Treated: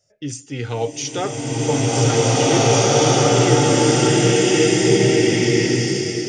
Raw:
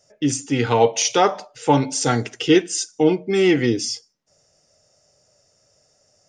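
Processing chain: fifteen-band EQ 100 Hz +8 dB, 250 Hz -4 dB, 1000 Hz -7 dB; bloom reverb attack 2.05 s, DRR -12 dB; gain -6.5 dB

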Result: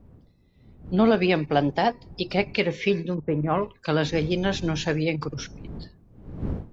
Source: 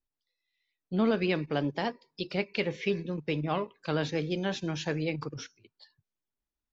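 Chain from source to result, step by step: wind noise 170 Hz -46 dBFS; 0.99–2.56 bell 750 Hz +8.5 dB 0.32 oct; 3.14–3.61 LPF 1200 Hz -> 2400 Hz 24 dB/oct; gain +6.5 dB

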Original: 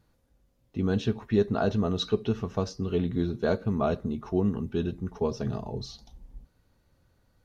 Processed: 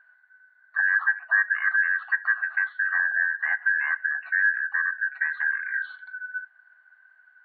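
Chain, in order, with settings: four-band scrambler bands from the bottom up 2143; resonant high shelf 1800 Hz -10.5 dB, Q 3; treble ducked by the level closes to 1800 Hz, closed at -28 dBFS; FFT band-pass 630–4500 Hz; gain +7.5 dB

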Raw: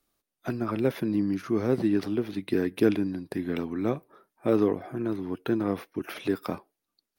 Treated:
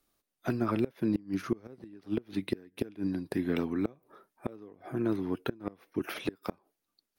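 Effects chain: flipped gate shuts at -17 dBFS, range -26 dB

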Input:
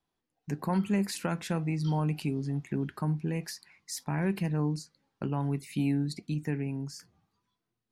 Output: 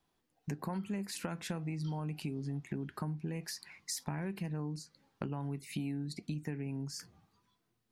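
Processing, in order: compressor 6:1, threshold -41 dBFS, peak gain reduction 16 dB; gain +5 dB

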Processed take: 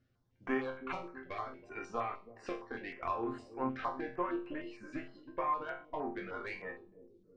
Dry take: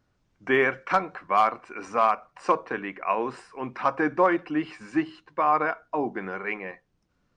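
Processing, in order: reverb removal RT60 1.1 s; compressor 6:1, threshold -31 dBFS, peak gain reduction 14 dB; added harmonics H 6 -22 dB, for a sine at -18.5 dBFS; air absorption 110 m; resonator bank F2 sus4, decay 0.4 s; on a send: analogue delay 0.324 s, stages 1024, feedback 57%, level -12 dB; on the sum: stepped notch 6.5 Hz 950–5300 Hz; gain +11.5 dB

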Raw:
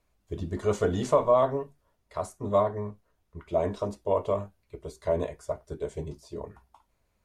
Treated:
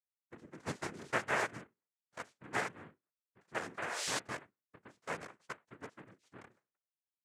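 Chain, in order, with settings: Wiener smoothing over 41 samples; gate with hold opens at -50 dBFS; differentiator; painted sound rise, 3.77–4.19, 630–5200 Hz -49 dBFS; noise vocoder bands 3; dynamic EQ 1100 Hz, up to -5 dB, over -55 dBFS, Q 1.3; gain +10.5 dB

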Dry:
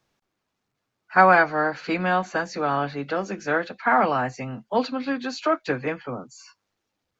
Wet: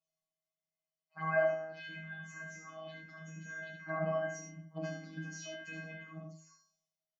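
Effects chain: bell 210 Hz +10 dB 0.41 oct; 1.58–3.82 compressor 4:1, threshold -24 dBFS, peak gain reduction 7 dB; transient shaper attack -7 dB, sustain +10 dB; resonator 230 Hz, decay 0.47 s, harmonics odd, mix 100%; envelope phaser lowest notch 260 Hz, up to 3900 Hz, full sweep at -37.5 dBFS; small resonant body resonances 400/600 Hz, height 11 dB, ringing for 90 ms; robotiser 159 Hz; echo 74 ms -5.5 dB; gain +5 dB

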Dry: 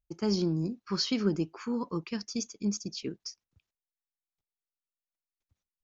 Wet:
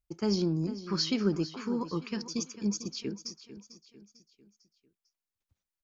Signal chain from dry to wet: feedback echo 0.448 s, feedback 45%, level -14 dB

